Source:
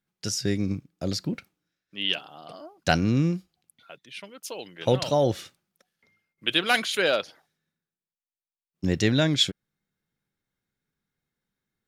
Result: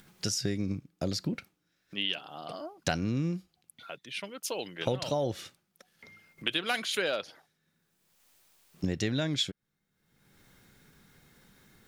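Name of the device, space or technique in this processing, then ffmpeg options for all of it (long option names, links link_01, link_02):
upward and downward compression: -af "acompressor=mode=upward:threshold=-44dB:ratio=2.5,acompressor=threshold=-31dB:ratio=4,volume=2.5dB"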